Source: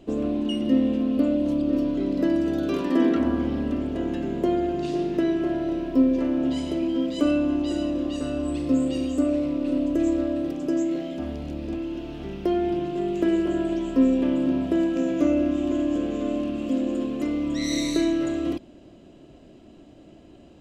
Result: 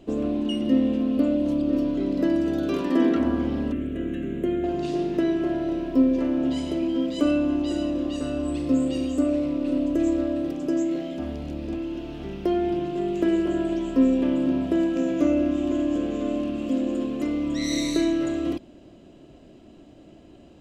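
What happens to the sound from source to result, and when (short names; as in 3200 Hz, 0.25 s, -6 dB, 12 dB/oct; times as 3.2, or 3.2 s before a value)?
3.72–4.64 fixed phaser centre 2100 Hz, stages 4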